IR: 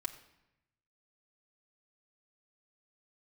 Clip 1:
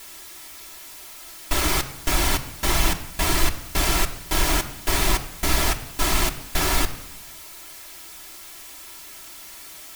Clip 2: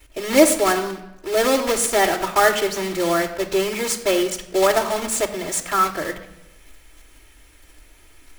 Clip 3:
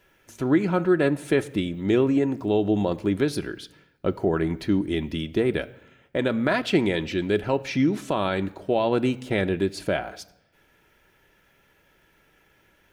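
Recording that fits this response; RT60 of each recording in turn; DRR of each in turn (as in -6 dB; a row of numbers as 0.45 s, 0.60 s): 1; no single decay rate, no single decay rate, no single decay rate; -1.5 dB, -11.0 dB, 7.5 dB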